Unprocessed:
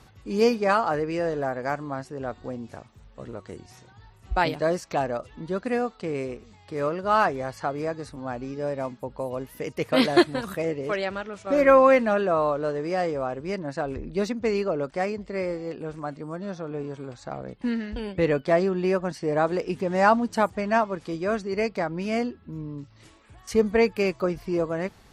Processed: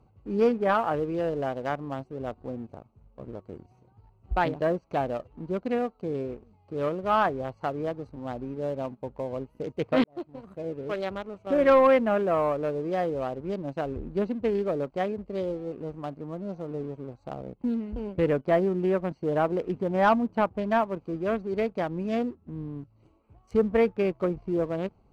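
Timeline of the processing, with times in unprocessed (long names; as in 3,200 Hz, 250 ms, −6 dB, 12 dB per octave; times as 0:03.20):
0:10.04–0:11.14: fade in
whole clip: adaptive Wiener filter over 25 samples; treble cut that deepens with the level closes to 2,300 Hz, closed at −20.5 dBFS; leveller curve on the samples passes 1; level −4.5 dB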